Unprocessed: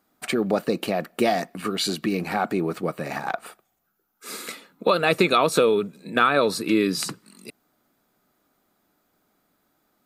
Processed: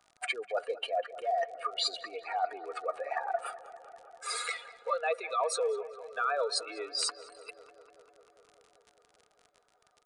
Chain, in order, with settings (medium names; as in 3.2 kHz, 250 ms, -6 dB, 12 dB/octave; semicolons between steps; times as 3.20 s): spectral contrast enhancement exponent 2; steep high-pass 570 Hz 36 dB/octave; comb 4.2 ms, depth 42%; reverse; compression 5:1, threshold -31 dBFS, peak gain reduction 14.5 dB; reverse; crackle 57 per s -45 dBFS; on a send: filtered feedback delay 198 ms, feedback 80%, low-pass 2.7 kHz, level -16 dB; on the sum: resampled via 22.05 kHz; trim +2 dB